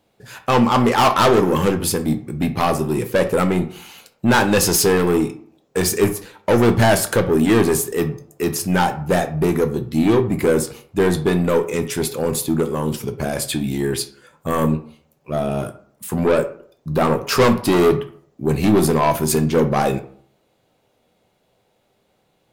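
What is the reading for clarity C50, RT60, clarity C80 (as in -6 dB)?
13.5 dB, 0.55 s, 17.5 dB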